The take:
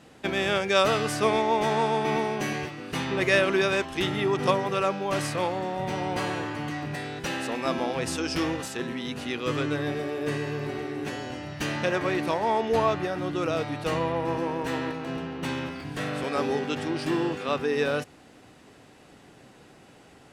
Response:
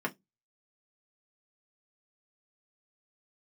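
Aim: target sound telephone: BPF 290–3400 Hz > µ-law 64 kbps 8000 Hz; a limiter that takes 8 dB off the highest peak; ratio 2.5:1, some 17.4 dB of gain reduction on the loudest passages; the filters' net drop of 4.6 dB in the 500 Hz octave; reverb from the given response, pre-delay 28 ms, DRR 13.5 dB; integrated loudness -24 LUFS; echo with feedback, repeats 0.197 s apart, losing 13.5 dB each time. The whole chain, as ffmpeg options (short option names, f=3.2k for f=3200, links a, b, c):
-filter_complex "[0:a]equalizer=f=500:t=o:g=-5,acompressor=threshold=-46dB:ratio=2.5,alimiter=level_in=10dB:limit=-24dB:level=0:latency=1,volume=-10dB,aecho=1:1:197|394:0.211|0.0444,asplit=2[a][b];[1:a]atrim=start_sample=2205,adelay=28[c];[b][c]afir=irnorm=-1:irlink=0,volume=-20dB[d];[a][d]amix=inputs=2:normalize=0,highpass=290,lowpass=3.4k,volume=21dB" -ar 8000 -c:a pcm_mulaw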